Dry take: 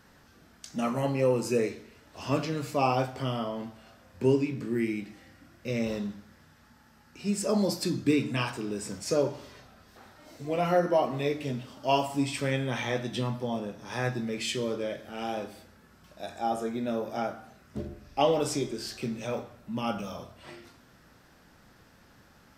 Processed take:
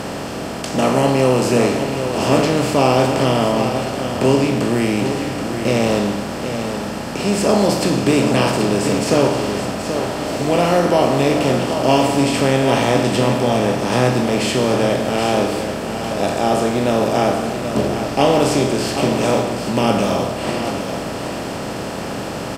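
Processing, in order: per-bin compression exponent 0.4; low shelf 190 Hz +4 dB; echo 0.779 s -8.5 dB; gain +4.5 dB

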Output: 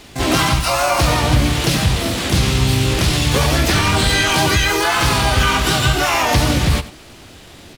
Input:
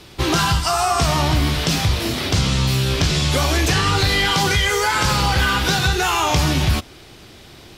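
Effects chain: dynamic EQ 7100 Hz, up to -4 dB, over -43 dBFS, Q 6.3; harmoniser -4 st -1 dB, +12 st -4 dB; on a send: echo 94 ms -16 dB; on the sum: gain -1 dB

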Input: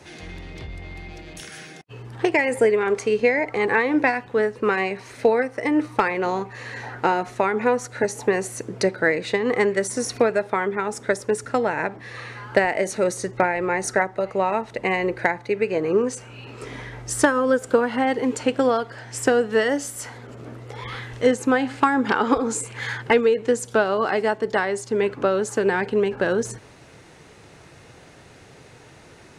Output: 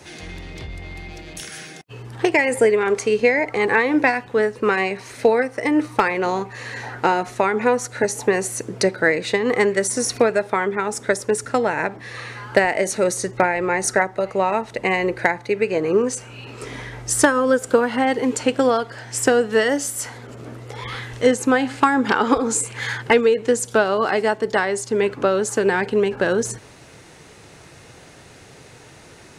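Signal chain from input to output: high shelf 4600 Hz +6 dB; gain +2 dB

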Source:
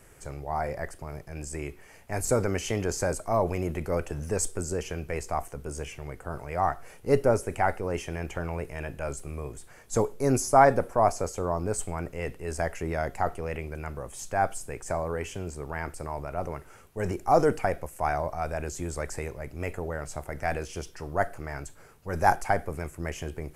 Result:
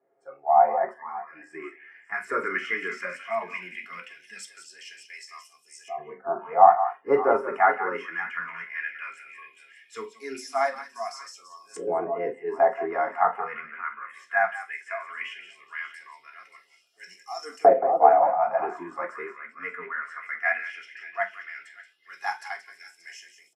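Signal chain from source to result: tapped delay 45/178/581 ms -13.5/-10.5/-14 dB; LFO band-pass saw up 0.17 Hz 620–6500 Hz; spectral noise reduction 20 dB; reverb RT60 0.20 s, pre-delay 3 ms, DRR 0 dB

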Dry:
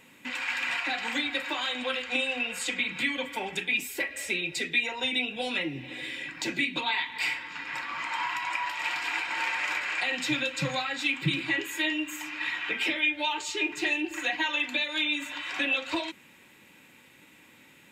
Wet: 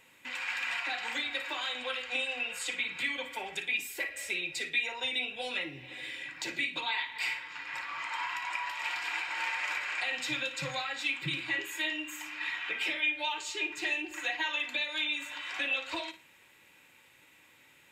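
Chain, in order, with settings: bell 220 Hz -11 dB 1.3 oct; on a send: flutter echo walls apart 9.6 m, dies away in 0.27 s; on the sum: gain -4 dB

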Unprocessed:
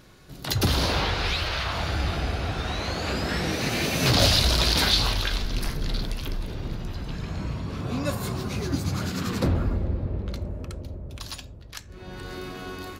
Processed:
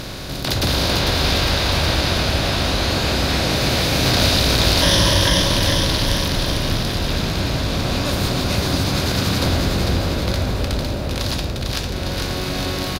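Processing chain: per-bin compression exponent 0.4; 4.82–5.4 ripple EQ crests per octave 1.2, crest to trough 17 dB; on a send: bouncing-ball echo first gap 0.45 s, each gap 0.9×, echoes 5; on the sum: gain -2 dB

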